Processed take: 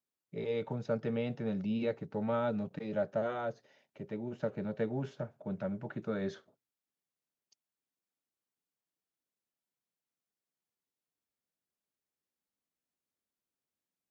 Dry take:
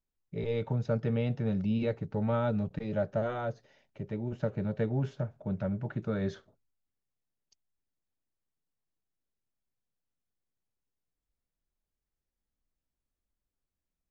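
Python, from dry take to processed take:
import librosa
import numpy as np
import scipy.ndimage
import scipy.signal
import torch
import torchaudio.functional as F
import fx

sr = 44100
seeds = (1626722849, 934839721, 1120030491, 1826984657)

y = scipy.signal.sosfilt(scipy.signal.butter(2, 190.0, 'highpass', fs=sr, output='sos'), x)
y = F.gain(torch.from_numpy(y), -1.5).numpy()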